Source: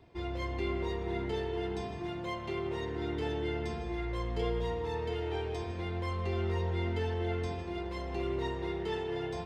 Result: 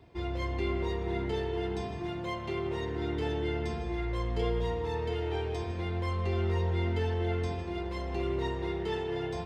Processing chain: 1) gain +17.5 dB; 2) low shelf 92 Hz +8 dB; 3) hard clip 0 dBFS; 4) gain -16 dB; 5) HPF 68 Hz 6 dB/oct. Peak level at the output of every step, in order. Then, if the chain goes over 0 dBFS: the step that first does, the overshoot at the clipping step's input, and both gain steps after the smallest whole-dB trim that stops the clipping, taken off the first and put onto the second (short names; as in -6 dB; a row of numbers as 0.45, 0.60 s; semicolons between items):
-4.0, -2.0, -2.0, -18.0, -19.0 dBFS; no overload